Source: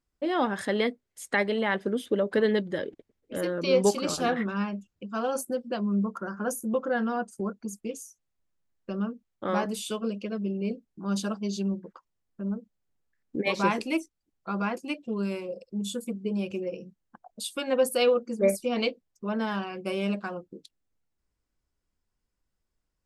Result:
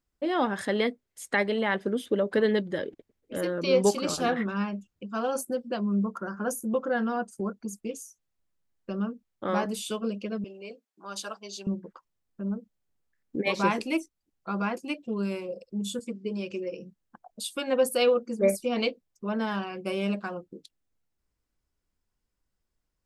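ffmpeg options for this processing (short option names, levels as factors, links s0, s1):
-filter_complex "[0:a]asettb=1/sr,asplit=3[s0][s1][s2];[s0]atrim=end=10.444[s3];[s1]atrim=start=10.44:end=11.67,asetpts=PTS-STARTPTS,afade=t=in:d=0.004:c=qsin,afade=t=out:st=1.226:d=0.004:c=qsin,highpass=630[s4];[s2]atrim=start=11.666[s5];[s3][s4]acrossfade=d=0.004:c1=hsin:c2=qsin[s6];[s6][s5]acrossfade=d=0.004:c1=qsin:c2=hsin,asettb=1/sr,asplit=3[s7][s8][s9];[s7]atrim=end=15.994[s10];[s8]atrim=start=15.99:end=16.79,asetpts=PTS-STARTPTS,afade=t=in:d=0.004:c=qsin,afade=t=out:st=0.796:d=0.004:c=qsin,highpass=150,equalizer=f=190:t=q:w=4:g=-4,equalizer=f=740:t=q:w=4:g=-9,equalizer=f=1900:t=q:w=4:g=4,equalizer=f=5000:t=q:w=4:g=6,lowpass=f=8100:w=0.5412,lowpass=f=8100:w=1.3066[s11];[s9]atrim=start=16.786[s12];[s10][s11]acrossfade=d=0.004:c1=hsin:c2=qsin[s13];[s13][s12]acrossfade=d=0.004:c1=qsin:c2=hsin"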